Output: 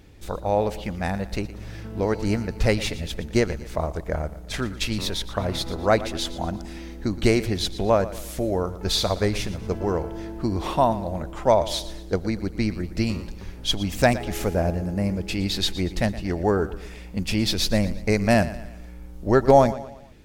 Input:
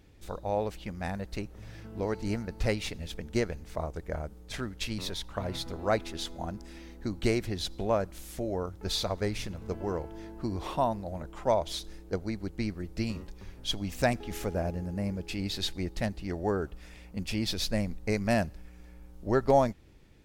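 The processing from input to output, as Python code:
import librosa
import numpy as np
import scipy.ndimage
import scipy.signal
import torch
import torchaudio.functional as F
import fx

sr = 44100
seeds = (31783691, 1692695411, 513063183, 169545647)

y = fx.echo_feedback(x, sr, ms=117, feedback_pct=43, wet_db=-15.5)
y = y * librosa.db_to_amplitude(8.0)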